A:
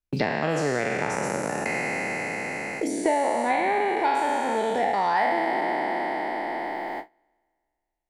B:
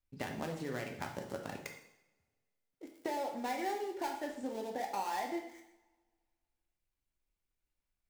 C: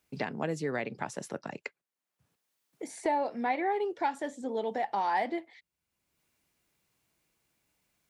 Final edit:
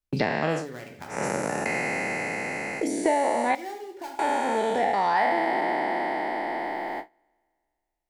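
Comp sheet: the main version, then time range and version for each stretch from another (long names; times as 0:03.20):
A
0:00.60–0:01.14: punch in from B, crossfade 0.16 s
0:03.55–0:04.19: punch in from B
not used: C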